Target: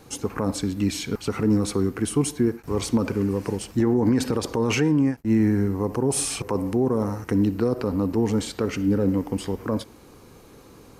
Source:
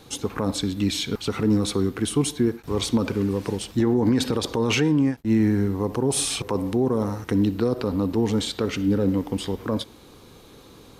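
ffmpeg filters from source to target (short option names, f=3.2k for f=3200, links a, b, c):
-af "equalizer=f=3.6k:t=o:w=0.47:g=-10.5"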